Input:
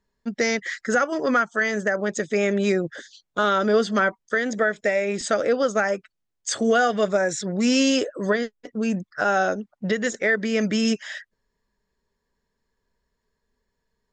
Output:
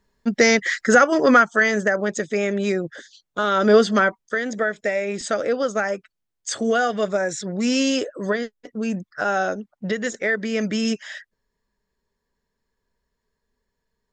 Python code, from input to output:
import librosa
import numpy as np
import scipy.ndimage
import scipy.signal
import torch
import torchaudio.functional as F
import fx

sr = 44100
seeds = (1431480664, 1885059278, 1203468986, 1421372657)

y = fx.gain(x, sr, db=fx.line((1.32, 7.0), (2.46, -1.0), (3.47, -1.0), (3.72, 6.0), (4.35, -1.0)))